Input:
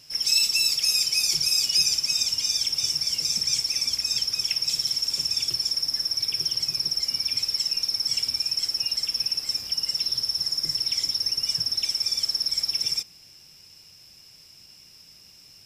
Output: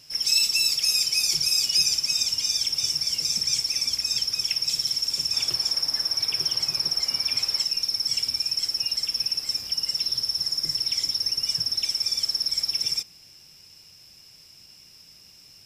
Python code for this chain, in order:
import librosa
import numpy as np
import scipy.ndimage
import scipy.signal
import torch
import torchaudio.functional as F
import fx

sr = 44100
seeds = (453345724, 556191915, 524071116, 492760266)

y = fx.peak_eq(x, sr, hz=950.0, db=8.5, octaves=2.4, at=(5.33, 7.64))